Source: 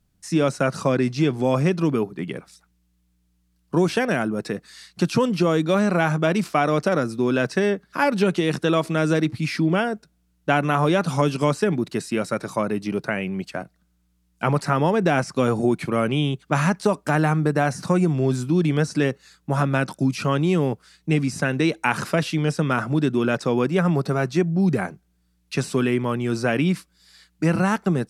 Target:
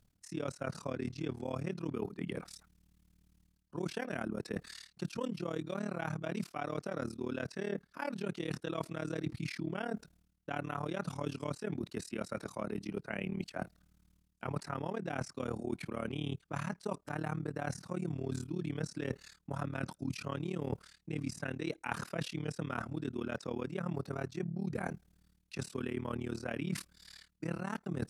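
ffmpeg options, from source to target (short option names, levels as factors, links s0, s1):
-af "areverse,acompressor=threshold=0.02:ratio=8,areverse,tremolo=f=37:d=0.947,volume=1.33"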